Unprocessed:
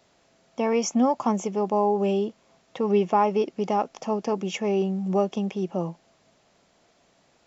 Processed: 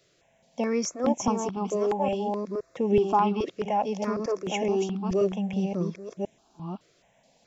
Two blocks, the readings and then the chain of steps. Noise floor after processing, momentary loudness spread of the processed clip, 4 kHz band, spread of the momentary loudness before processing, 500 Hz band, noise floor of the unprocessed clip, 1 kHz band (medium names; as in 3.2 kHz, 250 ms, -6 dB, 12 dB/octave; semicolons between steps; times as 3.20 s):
-66 dBFS, 13 LU, -1.0 dB, 7 LU, -1.5 dB, -64 dBFS, -2.0 dB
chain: chunks repeated in reverse 521 ms, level -3.5 dB; stepped phaser 4.7 Hz 230–4500 Hz